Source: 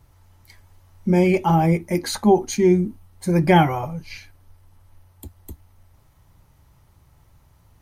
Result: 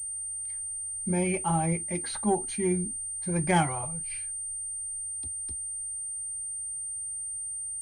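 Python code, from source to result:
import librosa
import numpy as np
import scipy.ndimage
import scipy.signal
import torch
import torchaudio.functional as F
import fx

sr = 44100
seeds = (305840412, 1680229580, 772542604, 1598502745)

y = fx.peak_eq(x, sr, hz=340.0, db=-5.5, octaves=2.3)
y = fx.cheby_harmonics(y, sr, harmonics=(3,), levels_db=(-23,), full_scale_db=-6.0)
y = fx.pwm(y, sr, carrier_hz=8800.0)
y = F.gain(torch.from_numpy(y), -5.0).numpy()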